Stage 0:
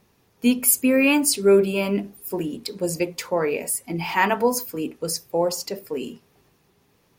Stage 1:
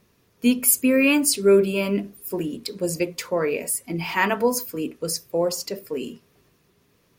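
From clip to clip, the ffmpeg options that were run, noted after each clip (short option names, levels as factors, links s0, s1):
-af "equalizer=f=820:w=6.4:g=-10.5"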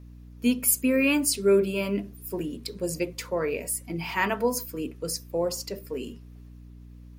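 -af "aeval=exprs='val(0)+0.01*(sin(2*PI*60*n/s)+sin(2*PI*2*60*n/s)/2+sin(2*PI*3*60*n/s)/3+sin(2*PI*4*60*n/s)/4+sin(2*PI*5*60*n/s)/5)':c=same,volume=0.596"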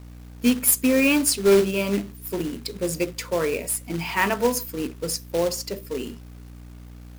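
-af "acrusher=bits=3:mode=log:mix=0:aa=0.000001,volume=1.5"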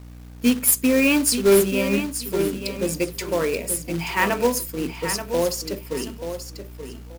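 -af "aecho=1:1:881|1762|2643:0.355|0.0745|0.0156,volume=1.12"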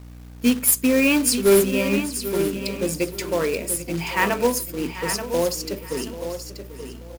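-af "aecho=1:1:789:0.168"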